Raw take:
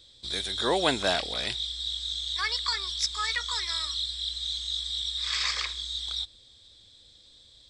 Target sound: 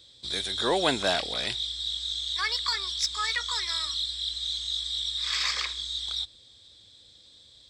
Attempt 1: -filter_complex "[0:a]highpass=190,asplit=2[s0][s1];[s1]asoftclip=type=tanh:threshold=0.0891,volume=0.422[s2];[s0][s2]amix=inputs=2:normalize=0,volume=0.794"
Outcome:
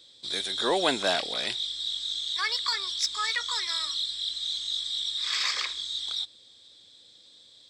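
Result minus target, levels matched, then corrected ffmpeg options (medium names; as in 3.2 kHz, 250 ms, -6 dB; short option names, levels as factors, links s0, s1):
125 Hz band -8.0 dB
-filter_complex "[0:a]highpass=66,asplit=2[s0][s1];[s1]asoftclip=type=tanh:threshold=0.0891,volume=0.422[s2];[s0][s2]amix=inputs=2:normalize=0,volume=0.794"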